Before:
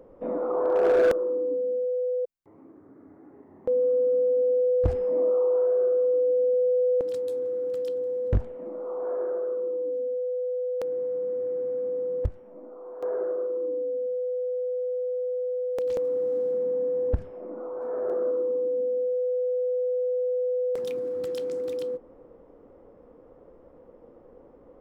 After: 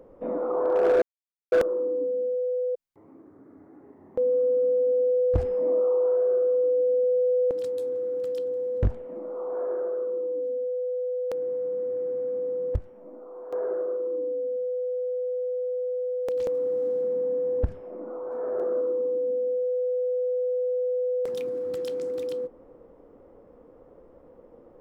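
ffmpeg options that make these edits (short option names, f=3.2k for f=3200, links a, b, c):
-filter_complex "[0:a]asplit=2[a][b];[a]atrim=end=1.02,asetpts=PTS-STARTPTS,afade=t=out:st=1.016:d=0.004:c=hsin,apad=pad_dur=0.5[c];[b]atrim=start=1.02,asetpts=PTS-STARTPTS,afade=t=in:d=0.004:c=hsin[d];[c][d]concat=n=2:v=0:a=1"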